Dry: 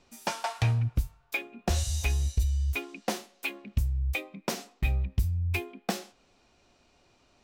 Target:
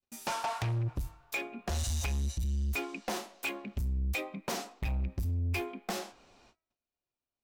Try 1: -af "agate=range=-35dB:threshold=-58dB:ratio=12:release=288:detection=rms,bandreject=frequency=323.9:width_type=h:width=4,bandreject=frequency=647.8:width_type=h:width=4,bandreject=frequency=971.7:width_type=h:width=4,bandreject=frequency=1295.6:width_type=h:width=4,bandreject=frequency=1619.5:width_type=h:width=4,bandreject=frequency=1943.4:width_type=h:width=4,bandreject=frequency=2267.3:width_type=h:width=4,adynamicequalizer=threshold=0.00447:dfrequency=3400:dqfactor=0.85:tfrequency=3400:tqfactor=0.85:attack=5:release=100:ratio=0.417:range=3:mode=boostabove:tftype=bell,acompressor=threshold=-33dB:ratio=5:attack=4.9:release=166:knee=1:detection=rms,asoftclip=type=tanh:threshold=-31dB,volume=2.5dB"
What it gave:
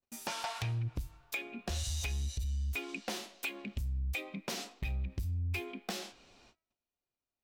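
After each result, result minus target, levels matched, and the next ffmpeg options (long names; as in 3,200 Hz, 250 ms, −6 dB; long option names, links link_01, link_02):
downward compressor: peak gain reduction +6.5 dB; 4,000 Hz band +3.5 dB
-af "agate=range=-35dB:threshold=-58dB:ratio=12:release=288:detection=rms,bandreject=frequency=323.9:width_type=h:width=4,bandreject=frequency=647.8:width_type=h:width=4,bandreject=frequency=971.7:width_type=h:width=4,bandreject=frequency=1295.6:width_type=h:width=4,bandreject=frequency=1619.5:width_type=h:width=4,bandreject=frequency=1943.4:width_type=h:width=4,bandreject=frequency=2267.3:width_type=h:width=4,adynamicequalizer=threshold=0.00447:dfrequency=3400:dqfactor=0.85:tfrequency=3400:tqfactor=0.85:attack=5:release=100:ratio=0.417:range=3:mode=boostabove:tftype=bell,acompressor=threshold=-24.5dB:ratio=5:attack=4.9:release=166:knee=1:detection=rms,asoftclip=type=tanh:threshold=-31dB,volume=2.5dB"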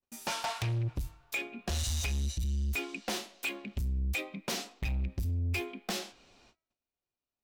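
4,000 Hz band +3.5 dB
-af "agate=range=-35dB:threshold=-58dB:ratio=12:release=288:detection=rms,bandreject=frequency=323.9:width_type=h:width=4,bandreject=frequency=647.8:width_type=h:width=4,bandreject=frequency=971.7:width_type=h:width=4,bandreject=frequency=1295.6:width_type=h:width=4,bandreject=frequency=1619.5:width_type=h:width=4,bandreject=frequency=1943.4:width_type=h:width=4,bandreject=frequency=2267.3:width_type=h:width=4,adynamicequalizer=threshold=0.00447:dfrequency=920:dqfactor=0.85:tfrequency=920:tqfactor=0.85:attack=5:release=100:ratio=0.417:range=3:mode=boostabove:tftype=bell,acompressor=threshold=-24.5dB:ratio=5:attack=4.9:release=166:knee=1:detection=rms,asoftclip=type=tanh:threshold=-31dB,volume=2.5dB"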